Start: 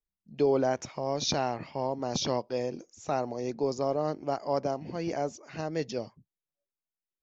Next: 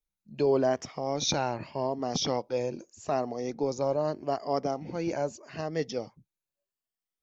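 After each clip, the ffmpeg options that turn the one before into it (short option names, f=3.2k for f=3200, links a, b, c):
-af "afftfilt=real='re*pow(10,7/40*sin(2*PI*(1.4*log(max(b,1)*sr/1024/100)/log(2)-(0.82)*(pts-256)/sr)))':imag='im*pow(10,7/40*sin(2*PI*(1.4*log(max(b,1)*sr/1024/100)/log(2)-(0.82)*(pts-256)/sr)))':win_size=1024:overlap=0.75"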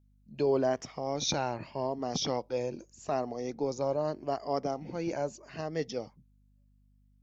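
-af "aeval=exprs='val(0)+0.000891*(sin(2*PI*50*n/s)+sin(2*PI*2*50*n/s)/2+sin(2*PI*3*50*n/s)/3+sin(2*PI*4*50*n/s)/4+sin(2*PI*5*50*n/s)/5)':c=same,volume=-2.5dB"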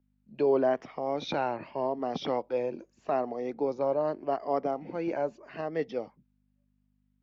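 -filter_complex "[0:a]acrossover=split=5700[a][b];[b]acompressor=threshold=-60dB:ratio=4:attack=1:release=60[c];[a][c]amix=inputs=2:normalize=0,acrossover=split=200 3300:gain=0.224 1 0.0794[d][e][f];[d][e][f]amix=inputs=3:normalize=0,volume=3dB"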